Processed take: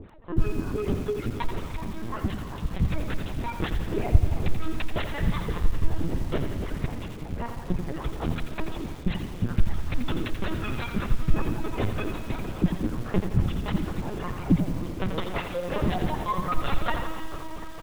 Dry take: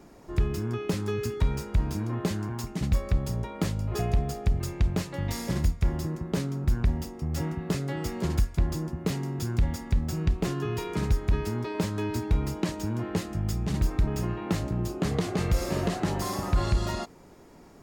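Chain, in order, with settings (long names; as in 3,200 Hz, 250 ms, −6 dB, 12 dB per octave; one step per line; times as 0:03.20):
reverb reduction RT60 1.5 s
0:13.77–0:15.81: high-pass filter 88 Hz → 190 Hz 24 dB per octave
reverb reduction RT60 0.83 s
parametric band 1,200 Hz +2.5 dB 0.23 octaves
in parallel at +2 dB: brickwall limiter −23.5 dBFS, peak gain reduction 8.5 dB
on the sum: flanger 0.76 Hz, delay 0 ms, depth 6.2 ms, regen +10%
two-band tremolo in antiphase 5.3 Hz, depth 100%, crossover 410 Hz
repeating echo 287 ms, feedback 23%, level −16 dB
on a send at −8 dB: convolution reverb RT60 5.8 s, pre-delay 58 ms
on the sum: linear-prediction vocoder at 8 kHz pitch kept
feedback echo at a low word length 85 ms, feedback 55%, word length 8 bits, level −7.5 dB
level +6.5 dB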